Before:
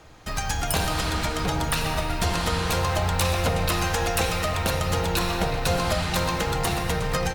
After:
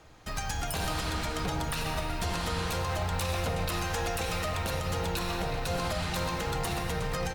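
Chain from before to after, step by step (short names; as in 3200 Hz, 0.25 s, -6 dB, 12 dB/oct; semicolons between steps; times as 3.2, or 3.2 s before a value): limiter -16 dBFS, peak gain reduction 6 dB; gain -5.5 dB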